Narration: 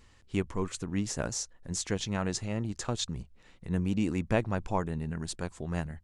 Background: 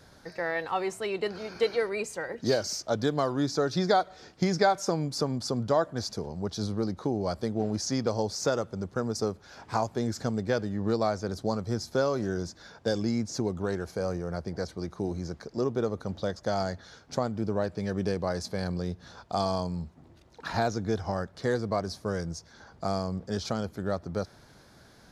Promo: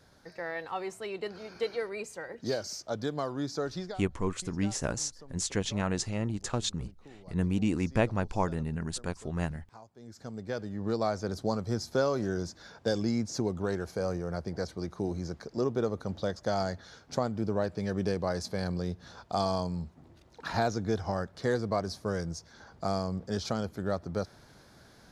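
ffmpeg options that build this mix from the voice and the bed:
-filter_complex "[0:a]adelay=3650,volume=1dB[a];[1:a]volume=16.5dB,afade=t=out:st=3.67:d=0.31:silence=0.133352,afade=t=in:st=9.98:d=1.29:silence=0.0749894[b];[a][b]amix=inputs=2:normalize=0"

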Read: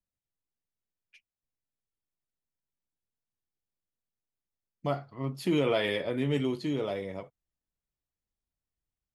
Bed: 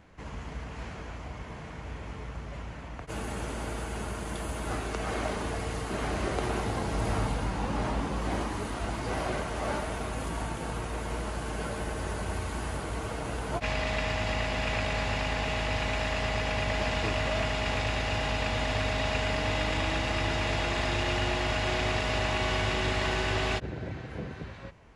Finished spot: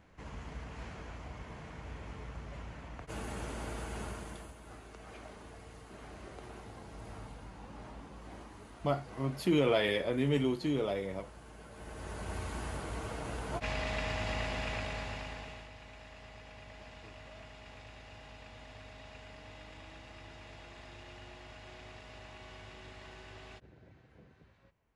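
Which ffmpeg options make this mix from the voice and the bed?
-filter_complex "[0:a]adelay=4000,volume=-1dB[a];[1:a]volume=7dB,afade=t=out:st=4.05:d=0.5:silence=0.237137,afade=t=in:st=11.7:d=0.73:silence=0.237137,afade=t=out:st=14.45:d=1.26:silence=0.149624[b];[a][b]amix=inputs=2:normalize=0"

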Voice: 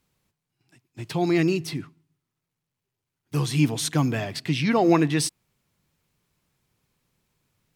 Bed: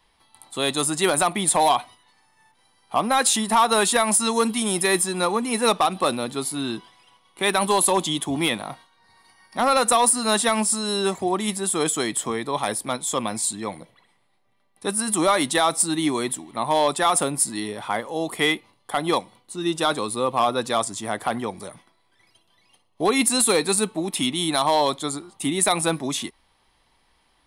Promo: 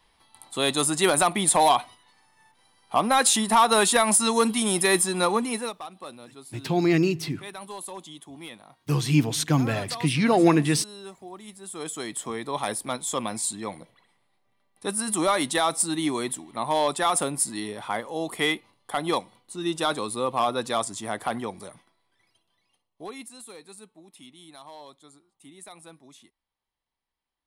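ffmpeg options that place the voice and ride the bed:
-filter_complex "[0:a]adelay=5550,volume=0.5dB[a];[1:a]volume=14.5dB,afade=t=out:st=5.39:d=0.33:silence=0.125893,afade=t=in:st=11.57:d=1.06:silence=0.177828,afade=t=out:st=21.37:d=1.94:silence=0.0841395[b];[a][b]amix=inputs=2:normalize=0"

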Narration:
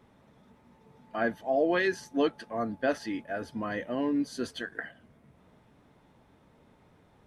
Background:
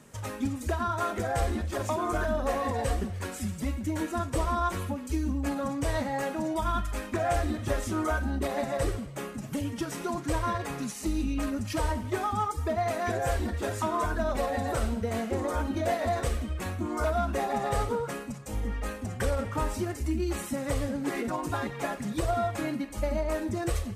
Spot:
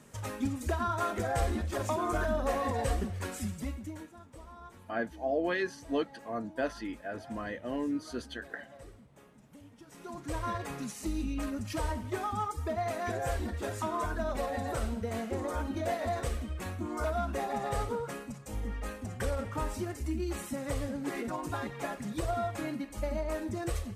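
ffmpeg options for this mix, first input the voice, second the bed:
-filter_complex "[0:a]adelay=3750,volume=-4.5dB[a];[1:a]volume=15.5dB,afade=t=out:st=3.38:d=0.74:silence=0.1,afade=t=in:st=9.85:d=0.68:silence=0.133352[b];[a][b]amix=inputs=2:normalize=0"

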